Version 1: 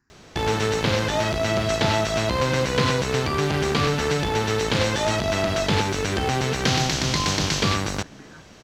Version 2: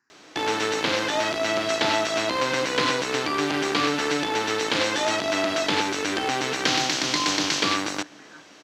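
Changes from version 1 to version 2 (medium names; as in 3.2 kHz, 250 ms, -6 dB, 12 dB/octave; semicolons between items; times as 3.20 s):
background: add peaking EQ 300 Hz +13.5 dB 0.24 oct; master: add frequency weighting A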